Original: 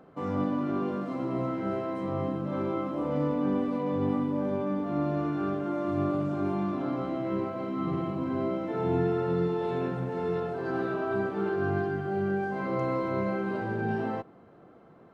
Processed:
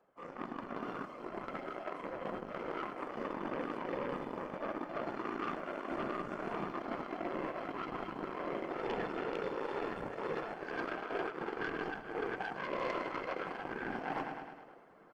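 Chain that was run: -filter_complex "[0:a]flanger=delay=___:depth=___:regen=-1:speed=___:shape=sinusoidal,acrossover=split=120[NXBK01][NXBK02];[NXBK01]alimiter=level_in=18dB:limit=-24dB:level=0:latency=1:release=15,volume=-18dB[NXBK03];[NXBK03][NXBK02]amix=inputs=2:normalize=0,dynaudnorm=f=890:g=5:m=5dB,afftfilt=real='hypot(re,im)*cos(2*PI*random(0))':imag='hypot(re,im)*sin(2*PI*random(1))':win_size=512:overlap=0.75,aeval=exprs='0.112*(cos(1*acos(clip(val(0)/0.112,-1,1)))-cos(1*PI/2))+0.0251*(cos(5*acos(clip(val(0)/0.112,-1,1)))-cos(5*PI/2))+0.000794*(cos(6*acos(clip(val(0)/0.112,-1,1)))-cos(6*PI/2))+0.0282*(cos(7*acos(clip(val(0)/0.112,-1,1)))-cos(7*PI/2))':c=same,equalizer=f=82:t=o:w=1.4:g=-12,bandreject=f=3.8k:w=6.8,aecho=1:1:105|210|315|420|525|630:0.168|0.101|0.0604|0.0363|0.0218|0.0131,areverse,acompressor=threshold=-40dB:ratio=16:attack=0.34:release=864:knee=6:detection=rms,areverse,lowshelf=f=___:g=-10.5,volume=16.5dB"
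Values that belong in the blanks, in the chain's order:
5.6, 3.9, 0.47, 480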